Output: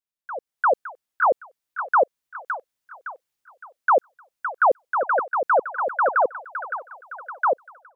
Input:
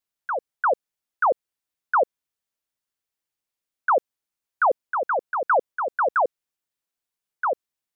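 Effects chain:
delay with a high-pass on its return 563 ms, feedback 39%, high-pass 1,400 Hz, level −5 dB
automatic gain control gain up to 13 dB
level −9 dB

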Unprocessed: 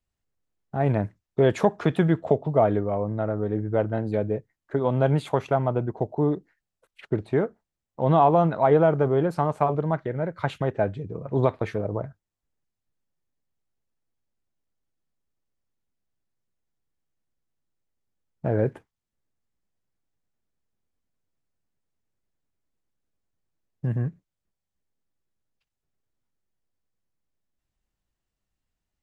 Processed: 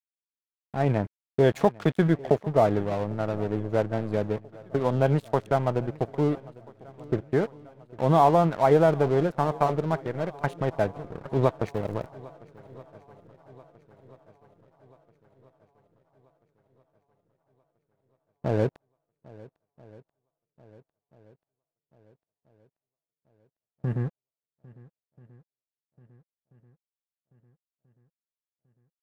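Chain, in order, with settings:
0:11.67–0:12.07: surface crackle 420 per second → 160 per second −41 dBFS
dead-zone distortion −36 dBFS
feedback echo with a long and a short gap by turns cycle 1,335 ms, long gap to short 1.5 to 1, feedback 47%, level −22 dB

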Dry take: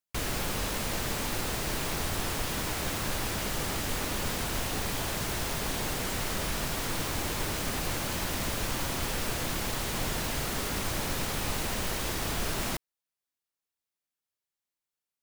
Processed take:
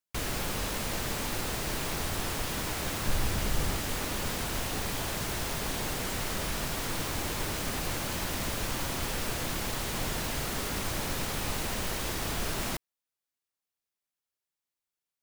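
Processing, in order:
0:03.06–0:03.76: low-shelf EQ 120 Hz +10 dB
level −1 dB

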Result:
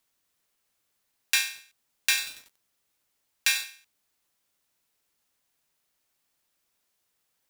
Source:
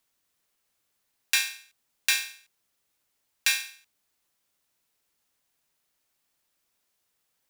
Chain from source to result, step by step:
0:01.46–0:03.64: feedback echo at a low word length 94 ms, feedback 55%, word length 6 bits, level −13 dB

